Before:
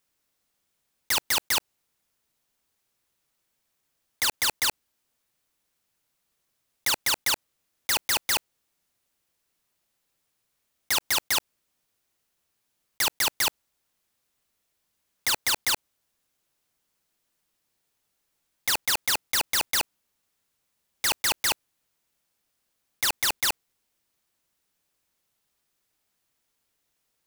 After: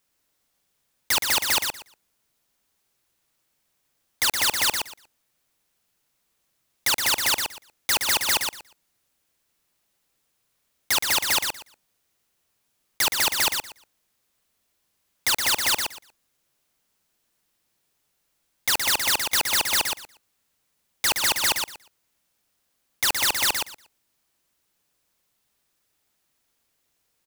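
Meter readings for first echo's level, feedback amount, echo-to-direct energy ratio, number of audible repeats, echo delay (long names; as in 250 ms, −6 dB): −5.5 dB, 18%, −5.5 dB, 2, 119 ms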